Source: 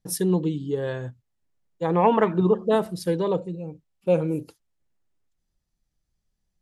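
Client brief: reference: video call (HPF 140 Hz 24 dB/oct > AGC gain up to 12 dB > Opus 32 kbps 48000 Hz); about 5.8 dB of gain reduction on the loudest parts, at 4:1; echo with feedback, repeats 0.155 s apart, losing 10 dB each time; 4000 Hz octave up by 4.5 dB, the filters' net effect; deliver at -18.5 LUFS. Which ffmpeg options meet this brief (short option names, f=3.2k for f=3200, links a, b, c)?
-af "equalizer=f=4k:t=o:g=6,acompressor=threshold=-21dB:ratio=4,highpass=f=140:w=0.5412,highpass=f=140:w=1.3066,aecho=1:1:155|310|465|620:0.316|0.101|0.0324|0.0104,dynaudnorm=m=12dB,volume=9.5dB" -ar 48000 -c:a libopus -b:a 32k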